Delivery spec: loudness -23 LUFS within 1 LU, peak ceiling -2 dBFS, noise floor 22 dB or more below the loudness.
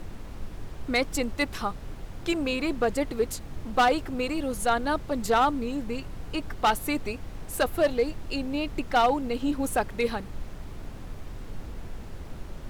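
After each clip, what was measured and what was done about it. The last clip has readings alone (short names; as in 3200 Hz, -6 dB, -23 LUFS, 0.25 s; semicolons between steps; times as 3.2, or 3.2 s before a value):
clipped 0.5%; flat tops at -16.0 dBFS; noise floor -41 dBFS; noise floor target -50 dBFS; loudness -27.5 LUFS; peak -16.0 dBFS; loudness target -23.0 LUFS
-> clip repair -16 dBFS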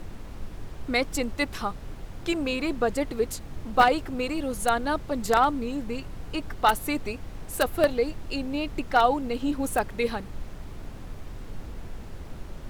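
clipped 0.0%; noise floor -41 dBFS; noise floor target -49 dBFS
-> noise print and reduce 8 dB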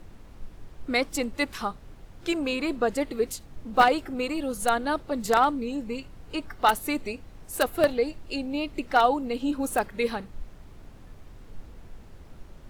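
noise floor -48 dBFS; noise floor target -49 dBFS
-> noise print and reduce 6 dB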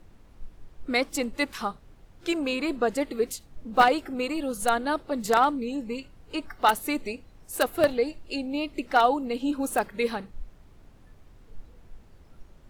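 noise floor -53 dBFS; loudness -27.0 LUFS; peak -6.5 dBFS; loudness target -23.0 LUFS
-> gain +4 dB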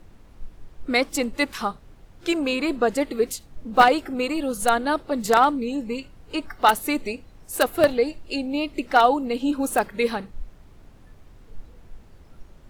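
loudness -23.0 LUFS; peak -2.5 dBFS; noise floor -49 dBFS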